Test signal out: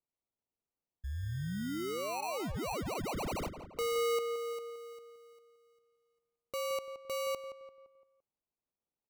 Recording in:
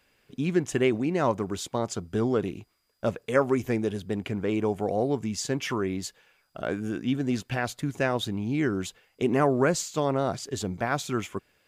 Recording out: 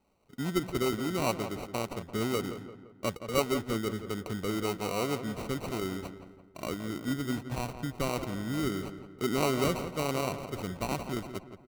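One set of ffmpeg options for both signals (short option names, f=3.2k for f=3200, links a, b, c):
-filter_complex "[0:a]acrusher=samples=26:mix=1:aa=0.000001,asplit=2[a][b];[b]adelay=171,lowpass=f=2.4k:p=1,volume=-10dB,asplit=2[c][d];[d]adelay=171,lowpass=f=2.4k:p=1,volume=0.48,asplit=2[e][f];[f]adelay=171,lowpass=f=2.4k:p=1,volume=0.48,asplit=2[g][h];[h]adelay=171,lowpass=f=2.4k:p=1,volume=0.48,asplit=2[i][j];[j]adelay=171,lowpass=f=2.4k:p=1,volume=0.48[k];[a][c][e][g][i][k]amix=inputs=6:normalize=0,volume=-5.5dB"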